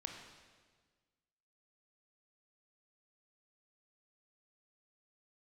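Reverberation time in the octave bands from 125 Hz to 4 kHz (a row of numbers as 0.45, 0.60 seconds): 1.8, 1.7, 1.6, 1.4, 1.4, 1.4 seconds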